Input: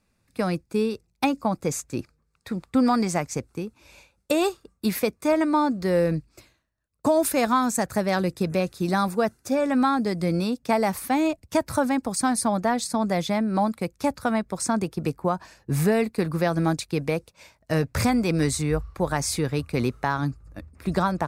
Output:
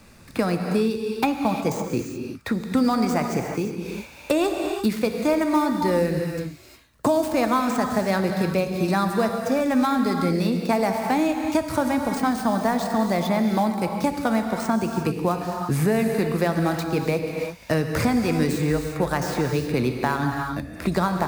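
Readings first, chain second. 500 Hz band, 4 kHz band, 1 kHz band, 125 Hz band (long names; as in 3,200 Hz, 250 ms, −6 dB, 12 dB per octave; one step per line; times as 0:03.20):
+1.5 dB, +0.5 dB, +1.5 dB, +1.5 dB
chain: gap after every zero crossing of 0.056 ms
reverb whose tail is shaped and stops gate 380 ms flat, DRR 4.5 dB
multiband upward and downward compressor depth 70%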